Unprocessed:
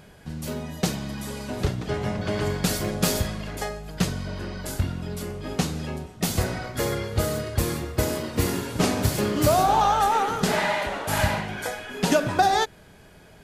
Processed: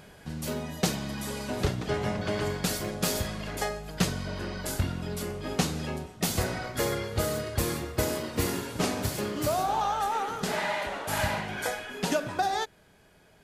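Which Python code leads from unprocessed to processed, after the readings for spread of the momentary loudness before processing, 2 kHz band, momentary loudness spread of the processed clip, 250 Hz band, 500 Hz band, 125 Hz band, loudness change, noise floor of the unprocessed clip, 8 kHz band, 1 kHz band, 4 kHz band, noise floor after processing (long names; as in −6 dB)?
12 LU, −4.0 dB, 6 LU, −5.0 dB, −4.5 dB, −5.5 dB, −5.0 dB, −50 dBFS, −3.0 dB, −6.5 dB, −3.5 dB, −59 dBFS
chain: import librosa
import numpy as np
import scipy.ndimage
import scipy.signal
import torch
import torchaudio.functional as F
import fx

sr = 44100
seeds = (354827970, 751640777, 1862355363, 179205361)

y = fx.low_shelf(x, sr, hz=230.0, db=-4.5)
y = fx.rider(y, sr, range_db=4, speed_s=0.5)
y = F.gain(torch.from_numpy(y), -3.5).numpy()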